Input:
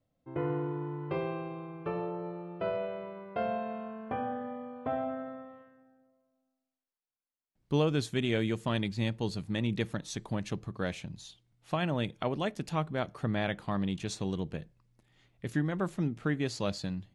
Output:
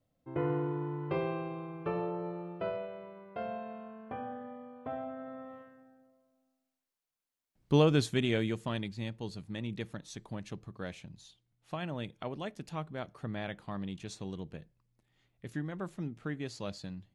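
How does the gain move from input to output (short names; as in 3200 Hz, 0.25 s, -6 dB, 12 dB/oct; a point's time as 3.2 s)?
2.47 s +0.5 dB
2.88 s -6 dB
5.14 s -6 dB
5.54 s +3 dB
7.96 s +3 dB
9.01 s -7 dB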